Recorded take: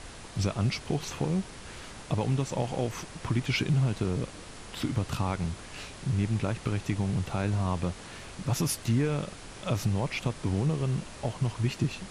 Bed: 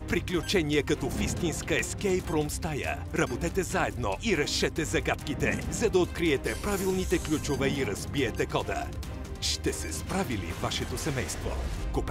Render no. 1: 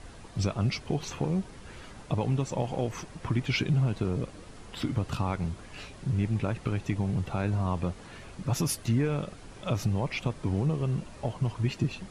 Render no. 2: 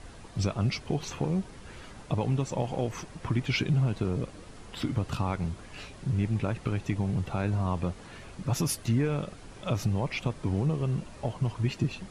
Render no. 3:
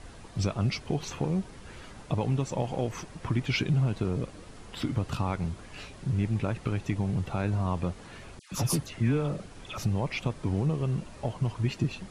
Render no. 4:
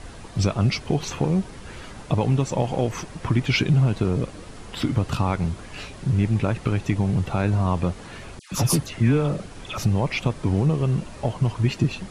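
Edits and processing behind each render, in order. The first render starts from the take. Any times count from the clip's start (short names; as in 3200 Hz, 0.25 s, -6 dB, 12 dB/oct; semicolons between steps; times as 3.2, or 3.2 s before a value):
denoiser 8 dB, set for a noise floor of -45 dBFS
nothing audible
8.39–9.78 dispersion lows, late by 0.129 s, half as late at 1400 Hz
gain +7 dB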